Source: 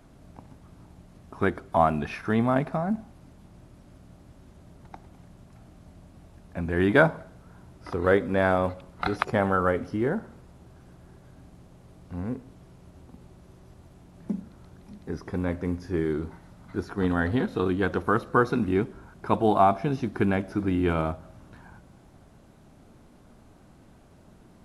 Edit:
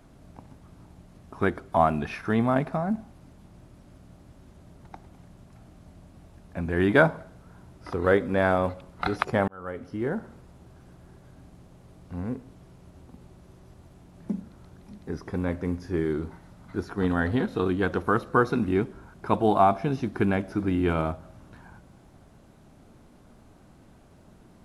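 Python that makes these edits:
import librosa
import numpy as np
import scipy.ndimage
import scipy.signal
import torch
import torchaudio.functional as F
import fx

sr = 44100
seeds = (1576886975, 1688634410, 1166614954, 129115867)

y = fx.edit(x, sr, fx.fade_in_span(start_s=9.48, length_s=0.79), tone=tone)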